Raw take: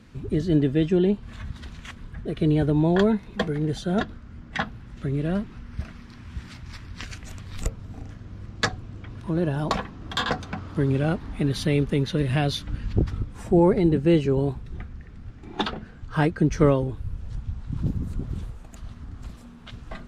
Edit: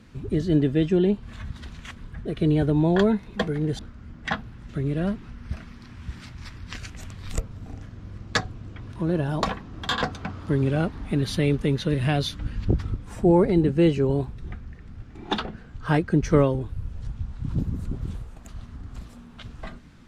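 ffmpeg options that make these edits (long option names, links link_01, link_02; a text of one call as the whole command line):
ffmpeg -i in.wav -filter_complex "[0:a]asplit=2[link_01][link_02];[link_01]atrim=end=3.792[link_03];[link_02]atrim=start=4.068[link_04];[link_03][link_04]acrossfade=duration=0.004:curve1=hsin:curve2=hsin" out.wav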